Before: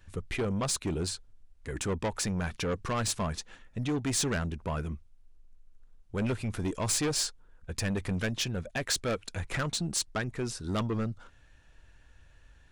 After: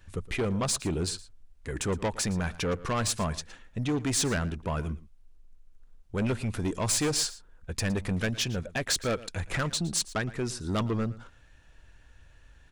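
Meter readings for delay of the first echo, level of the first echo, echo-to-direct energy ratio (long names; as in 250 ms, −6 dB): 114 ms, −18.5 dB, −18.5 dB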